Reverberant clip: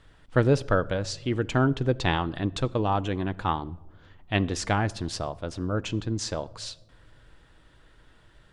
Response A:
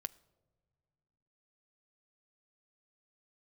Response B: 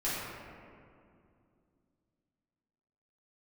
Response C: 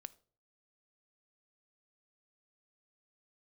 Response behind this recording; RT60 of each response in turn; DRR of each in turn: A; non-exponential decay, 2.4 s, non-exponential decay; 14.0, −11.0, 13.5 decibels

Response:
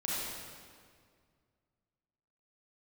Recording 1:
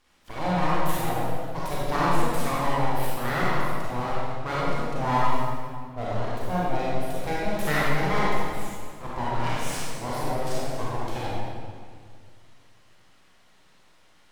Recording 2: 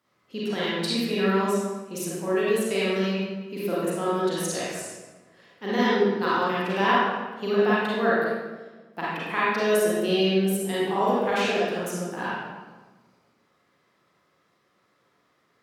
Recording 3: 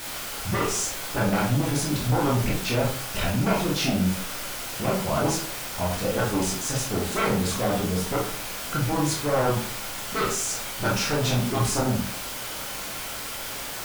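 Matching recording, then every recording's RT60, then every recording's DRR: 1; 2.0, 1.3, 0.50 seconds; −7.5, −8.5, −4.0 decibels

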